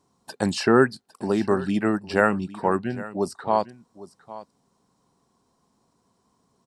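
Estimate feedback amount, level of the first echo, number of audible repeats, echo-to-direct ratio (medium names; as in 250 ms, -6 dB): no regular repeats, -17.0 dB, 1, -17.0 dB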